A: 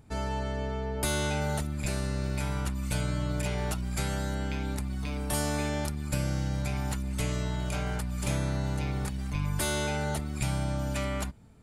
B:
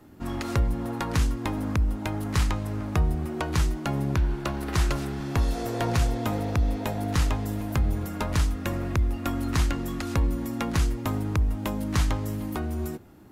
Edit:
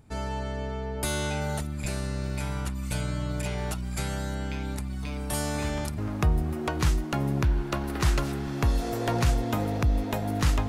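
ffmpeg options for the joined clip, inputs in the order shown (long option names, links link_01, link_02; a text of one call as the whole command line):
ffmpeg -i cue0.wav -i cue1.wav -filter_complex "[1:a]asplit=2[link_01][link_02];[0:a]apad=whole_dur=10.68,atrim=end=10.68,atrim=end=5.982[link_03];[link_02]atrim=start=2.708:end=7.41[link_04];[link_01]atrim=start=2.26:end=2.71,asetpts=PTS-STARTPTS,volume=-14dB,afade=type=in:duration=0.004:curve=hsin,afade=type=out:start_time=0.446:duration=0.004:curve=hsin,adelay=243873S[link_05];[link_03][link_04]acrossfade=duration=0.004:curve1=hsin:curve2=hsin[link_06];[link_06][link_05]amix=inputs=2:normalize=0" out.wav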